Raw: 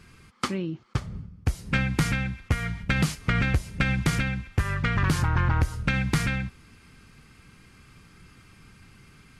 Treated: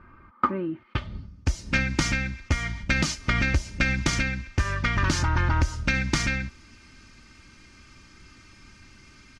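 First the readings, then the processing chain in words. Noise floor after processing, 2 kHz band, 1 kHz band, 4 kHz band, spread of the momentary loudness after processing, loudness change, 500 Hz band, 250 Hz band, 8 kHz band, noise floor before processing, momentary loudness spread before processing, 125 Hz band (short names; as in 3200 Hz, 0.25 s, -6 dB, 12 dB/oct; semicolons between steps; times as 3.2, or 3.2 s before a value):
-53 dBFS, +2.5 dB, +2.0 dB, +3.5 dB, 8 LU, +1.0 dB, +1.0 dB, -1.0 dB, +5.0 dB, -54 dBFS, 8 LU, -2.0 dB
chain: comb 3.3 ms, depth 53%; low-pass sweep 1200 Hz -> 6000 Hz, 0.52–1.34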